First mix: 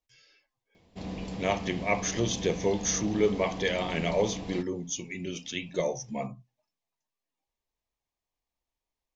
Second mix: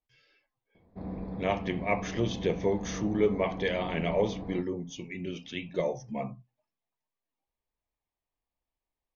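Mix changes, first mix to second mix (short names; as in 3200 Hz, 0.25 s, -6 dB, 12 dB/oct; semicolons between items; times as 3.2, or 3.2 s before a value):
background: add running mean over 15 samples; master: add air absorption 220 m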